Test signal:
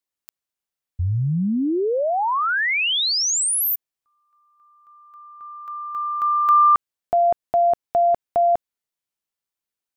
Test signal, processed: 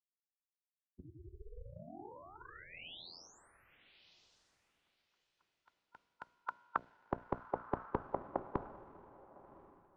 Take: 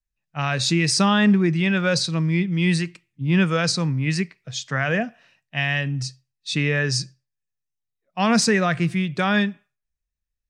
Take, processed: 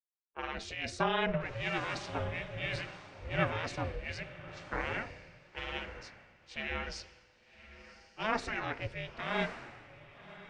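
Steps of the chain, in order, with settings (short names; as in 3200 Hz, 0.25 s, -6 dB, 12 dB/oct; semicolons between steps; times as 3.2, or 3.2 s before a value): spectral gate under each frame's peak -10 dB weak; notches 60/120/180/240/300/360/420/480 Hz; in parallel at +2 dB: limiter -18 dBFS; on the sum: ring modulator 220 Hz; tape spacing loss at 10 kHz 28 dB; on a send: diffused feedback echo 1.093 s, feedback 40%, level -8 dB; on the sum: three-band expander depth 70%; gain -7 dB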